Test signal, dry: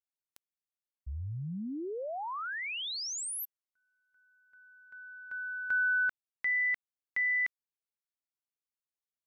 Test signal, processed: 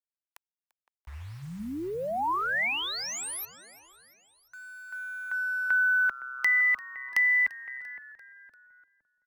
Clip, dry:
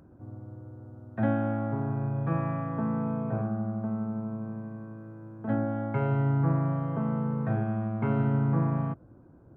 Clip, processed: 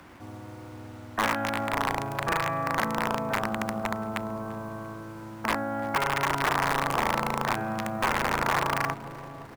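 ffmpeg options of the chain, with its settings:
-filter_complex "[0:a]bandreject=f=63.35:t=h:w=4,bandreject=f=126.7:t=h:w=4,bandreject=f=190.05:t=h:w=4,acrossover=split=110|300|800|1700[s0][s1][s2][s3][s4];[s0]acompressor=threshold=0.00447:ratio=3[s5];[s1]acompressor=threshold=0.0112:ratio=5[s6];[s2]acompressor=threshold=0.0126:ratio=10[s7];[s3]acompressor=threshold=0.00224:ratio=3[s8];[s4]acompressor=threshold=0.0112:ratio=2.5[s9];[s5][s6][s7][s8][s9]amix=inputs=5:normalize=0,acrusher=bits=9:mix=0:aa=0.000001,asplit=2[s10][s11];[s11]adelay=513,lowpass=f=820:p=1,volume=0.299,asplit=2[s12][s13];[s13]adelay=513,lowpass=f=820:p=1,volume=0.39,asplit=2[s14][s15];[s15]adelay=513,lowpass=f=820:p=1,volume=0.39,asplit=2[s16][s17];[s17]adelay=513,lowpass=f=820:p=1,volume=0.39[s18];[s12][s14][s16][s18]amix=inputs=4:normalize=0[s19];[s10][s19]amix=inputs=2:normalize=0,aeval=exprs='(mod(22.4*val(0)+1,2)-1)/22.4':c=same,equalizer=f=125:t=o:w=1:g=-6,equalizer=f=1000:t=o:w=1:g=10,equalizer=f=2000:t=o:w=1:g=7,asplit=2[s20][s21];[s21]asplit=4[s22][s23][s24][s25];[s22]adelay=343,afreqshift=-130,volume=0.0944[s26];[s23]adelay=686,afreqshift=-260,volume=0.0537[s27];[s24]adelay=1029,afreqshift=-390,volume=0.0305[s28];[s25]adelay=1372,afreqshift=-520,volume=0.0176[s29];[s26][s27][s28][s29]amix=inputs=4:normalize=0[s30];[s20][s30]amix=inputs=2:normalize=0,volume=1.5"

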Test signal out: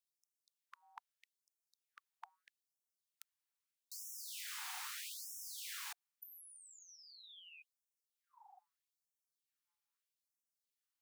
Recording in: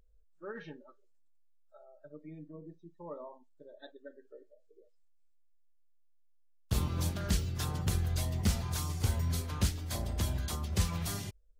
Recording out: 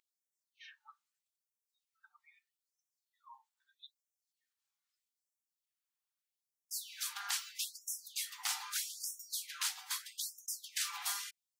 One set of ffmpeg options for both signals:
-af "afftfilt=real='re*lt(hypot(re,im),0.0398)':imag='im*lt(hypot(re,im),0.0398)':win_size=1024:overlap=0.75,afftfilt=real='re*gte(b*sr/1024,690*pow(5400/690,0.5+0.5*sin(2*PI*0.79*pts/sr)))':imag='im*gte(b*sr/1024,690*pow(5400/690,0.5+0.5*sin(2*PI*0.79*pts/sr)))':win_size=1024:overlap=0.75,volume=1.41"

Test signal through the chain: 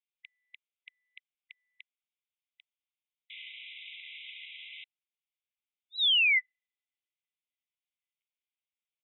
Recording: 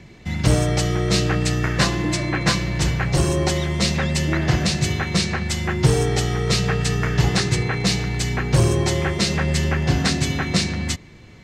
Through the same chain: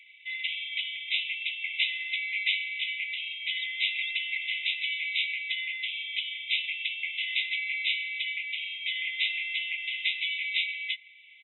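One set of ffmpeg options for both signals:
-af "aresample=8000,aresample=44100,afftfilt=real='re*eq(mod(floor(b*sr/1024/2000),2),1)':imag='im*eq(mod(floor(b*sr/1024/2000),2),1)':win_size=1024:overlap=0.75,volume=1.26"

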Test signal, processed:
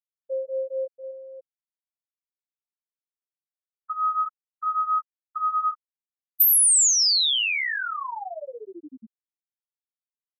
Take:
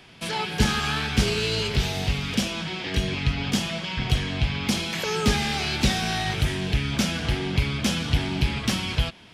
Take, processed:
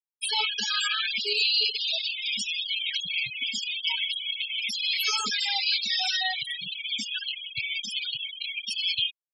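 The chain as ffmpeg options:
-af "highpass=f=360:p=1,flanger=delay=19.5:depth=7.2:speed=0.39,crystalizer=i=9:c=0,alimiter=limit=0.282:level=0:latency=1:release=188,aecho=1:1:235:0.106,adynamicequalizer=threshold=0.00708:dfrequency=6000:dqfactor=6.9:tfrequency=6000:tqfactor=6.9:attack=5:release=100:ratio=0.375:range=2.5:mode=cutabove:tftype=bell,afftfilt=real='re*gte(hypot(re,im),0.158)':imag='im*gte(hypot(re,im),0.158)':win_size=1024:overlap=0.75"

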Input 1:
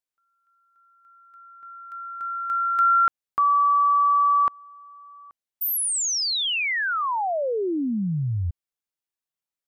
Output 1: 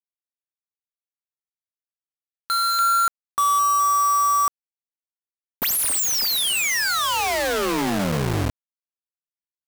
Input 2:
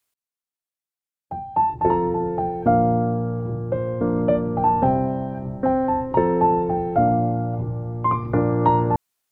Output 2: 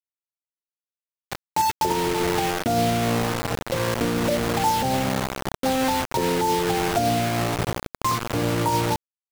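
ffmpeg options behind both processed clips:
-filter_complex "[0:a]asplit=2[s0][s1];[s1]adelay=209,lowpass=f=920:p=1,volume=0.2,asplit=2[s2][s3];[s3]adelay=209,lowpass=f=920:p=1,volume=0.49,asplit=2[s4][s5];[s5]adelay=209,lowpass=f=920:p=1,volume=0.49,asplit=2[s6][s7];[s7]adelay=209,lowpass=f=920:p=1,volume=0.49,asplit=2[s8][s9];[s9]adelay=209,lowpass=f=920:p=1,volume=0.49[s10];[s0][s2][s4][s6][s8][s10]amix=inputs=6:normalize=0,acrusher=bits=3:mix=0:aa=0.000001,alimiter=limit=0.2:level=0:latency=1:release=116"

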